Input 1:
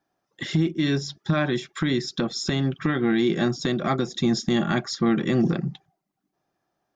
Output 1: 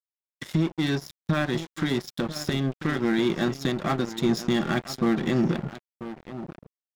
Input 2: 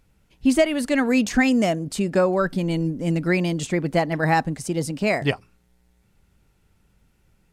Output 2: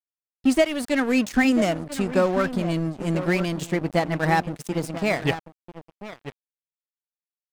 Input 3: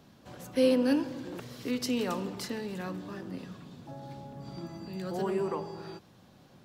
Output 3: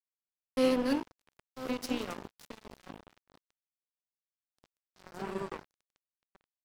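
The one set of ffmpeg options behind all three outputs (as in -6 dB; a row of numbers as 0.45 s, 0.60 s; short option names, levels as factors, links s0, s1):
-filter_complex "[0:a]asplit=2[s0][s1];[s1]adelay=991.3,volume=0.355,highshelf=f=4000:g=-22.3[s2];[s0][s2]amix=inputs=2:normalize=0,aeval=exprs='sgn(val(0))*max(abs(val(0))-0.0266,0)':c=same"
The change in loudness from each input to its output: -2.0 LU, -1.5 LU, -1.5 LU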